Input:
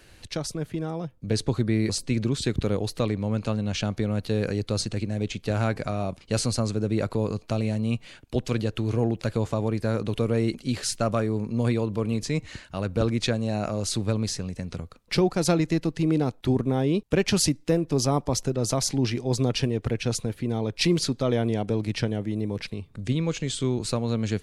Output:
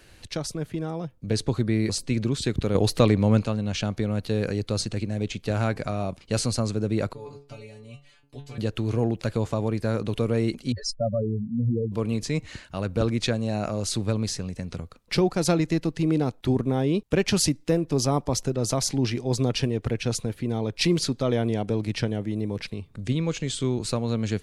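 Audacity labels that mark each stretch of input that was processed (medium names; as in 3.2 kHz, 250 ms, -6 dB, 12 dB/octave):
2.750000	3.430000	gain +7 dB
7.130000	8.580000	inharmonic resonator 140 Hz, decay 0.35 s, inharmonicity 0.002
10.720000	11.920000	spectral contrast enhancement exponent 3.8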